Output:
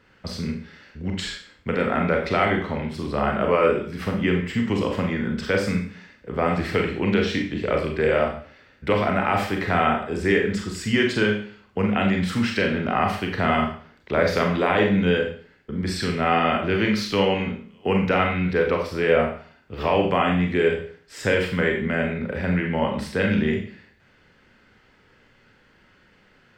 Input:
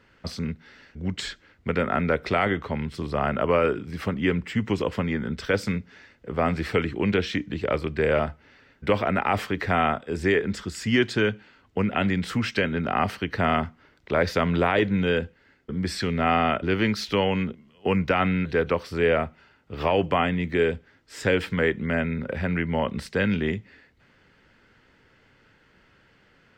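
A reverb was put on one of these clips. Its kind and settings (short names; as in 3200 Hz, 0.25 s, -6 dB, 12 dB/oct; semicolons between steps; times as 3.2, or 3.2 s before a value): Schroeder reverb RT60 0.47 s, combs from 30 ms, DRR 1.5 dB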